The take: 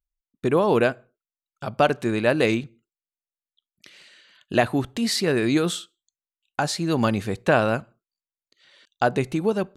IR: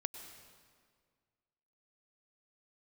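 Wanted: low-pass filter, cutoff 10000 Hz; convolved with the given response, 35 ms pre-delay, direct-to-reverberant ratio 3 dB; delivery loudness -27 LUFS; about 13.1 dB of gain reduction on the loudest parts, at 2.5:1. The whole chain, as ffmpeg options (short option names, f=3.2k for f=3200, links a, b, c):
-filter_complex "[0:a]lowpass=10k,acompressor=threshold=-35dB:ratio=2.5,asplit=2[a][b];[1:a]atrim=start_sample=2205,adelay=35[c];[b][c]afir=irnorm=-1:irlink=0,volume=-2dB[d];[a][d]amix=inputs=2:normalize=0,volume=6dB"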